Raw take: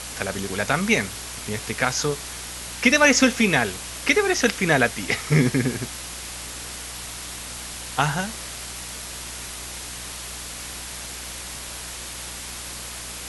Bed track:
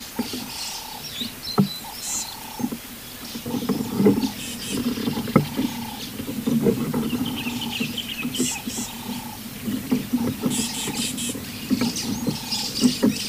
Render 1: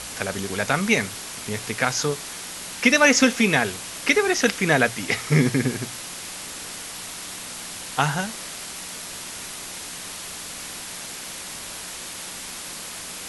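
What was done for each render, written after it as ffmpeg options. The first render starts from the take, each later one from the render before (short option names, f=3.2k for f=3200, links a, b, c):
-af "bandreject=f=60:t=h:w=4,bandreject=f=120:t=h:w=4"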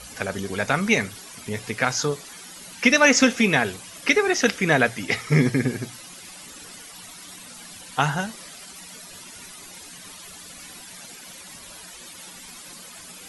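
-af "afftdn=nr=13:nf=-36"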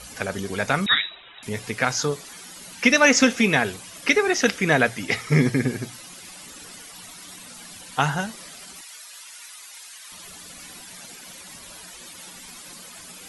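-filter_complex "[0:a]asettb=1/sr,asplit=3[a][b][c];[a]atrim=end=0.864[d];[b]atrim=start=0.86:end=1.43,asetpts=PTS-STARTPTS,afade=t=in:d=0.004:c=qsin,afade=t=out:st=0.566:d=0.004:c=qsin,lowpass=f=3.4k:t=q:w=0.5098,lowpass=f=3.4k:t=q:w=0.6013,lowpass=f=3.4k:t=q:w=0.9,lowpass=f=3.4k:t=q:w=2.563,afreqshift=-4000[e];[c]atrim=start=1.426[f];[d][e]acrossfade=d=0.004:c1=hsin:c2=qsin[g];[g][f]acrossfade=d=0.004:c1=qsin:c2=hsin,asettb=1/sr,asplit=3[h][i][j];[h]atrim=end=8.814[k];[i]atrim=start=8.81:end=10.12,asetpts=PTS-STARTPTS,afade=t=in:d=0.004:c=qsin,afade=t=out:st=1.306:d=0.004:c=qsin,highpass=1.1k[l];[j]atrim=start=10.116[m];[k][l]acrossfade=d=0.004:c1=hsin:c2=qsin[n];[n][m]acrossfade=d=0.004:c1=qsin:c2=hsin"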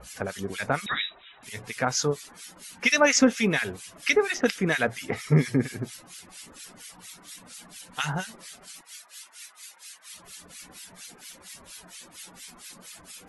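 -filter_complex "[0:a]acrossover=split=1500[a][b];[a]aeval=exprs='val(0)*(1-1/2+1/2*cos(2*PI*4.3*n/s))':c=same[c];[b]aeval=exprs='val(0)*(1-1/2-1/2*cos(2*PI*4.3*n/s))':c=same[d];[c][d]amix=inputs=2:normalize=0"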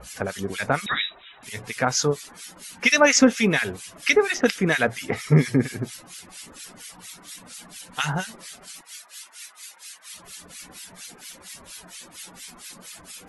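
-af "volume=3.5dB"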